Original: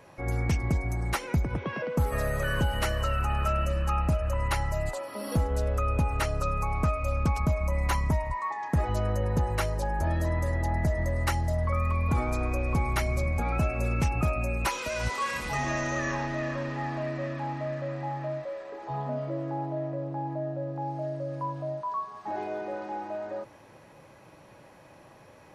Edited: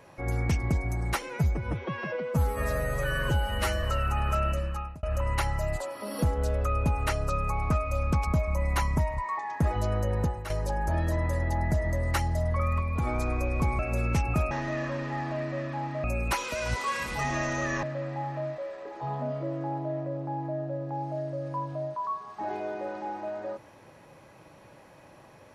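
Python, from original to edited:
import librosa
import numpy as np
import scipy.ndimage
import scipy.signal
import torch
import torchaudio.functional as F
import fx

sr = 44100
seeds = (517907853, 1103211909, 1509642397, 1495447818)

y = fx.edit(x, sr, fx.stretch_span(start_s=1.22, length_s=1.74, factor=1.5),
    fx.fade_out_span(start_s=3.62, length_s=0.54),
    fx.fade_out_to(start_s=9.35, length_s=0.28, curve='qua', floor_db=-10.0),
    fx.clip_gain(start_s=11.94, length_s=0.26, db=-3.0),
    fx.cut(start_s=12.92, length_s=0.74),
    fx.move(start_s=16.17, length_s=1.53, to_s=14.38), tone=tone)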